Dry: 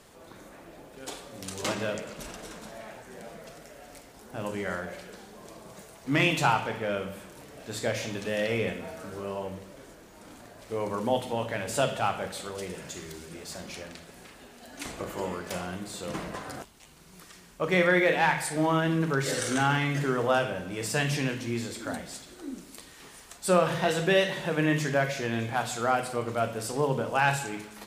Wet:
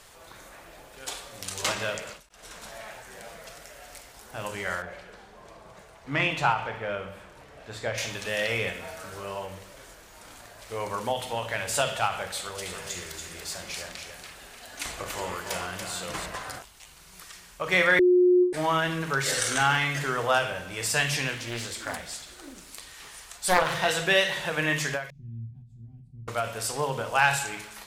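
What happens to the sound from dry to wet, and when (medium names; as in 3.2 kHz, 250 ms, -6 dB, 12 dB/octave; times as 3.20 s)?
2.29–2.79 s: fade in equal-power
4.82–7.98 s: low-pass 1.5 kHz 6 dB/octave
12.37–16.26 s: delay 285 ms -5.5 dB
17.99–18.53 s: bleep 360 Hz -10 dBFS
21.33–23.75 s: loudspeaker Doppler distortion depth 0.72 ms
25.10–26.28 s: inverse Chebyshev low-pass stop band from 500 Hz, stop band 50 dB
whole clip: peaking EQ 250 Hz -14 dB 2.3 oct; endings held to a fixed fall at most 130 dB/s; trim +6 dB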